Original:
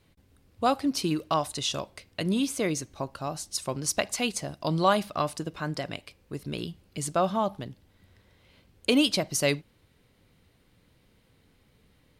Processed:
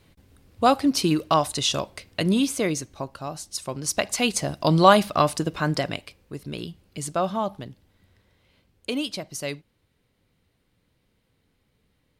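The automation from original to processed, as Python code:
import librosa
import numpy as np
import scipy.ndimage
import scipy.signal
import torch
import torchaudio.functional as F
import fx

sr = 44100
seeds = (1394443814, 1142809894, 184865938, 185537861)

y = fx.gain(x, sr, db=fx.line((2.22, 6.0), (3.2, 0.0), (3.73, 0.0), (4.48, 8.0), (5.78, 8.0), (6.33, 0.5), (7.62, 0.5), (9.06, -6.0)))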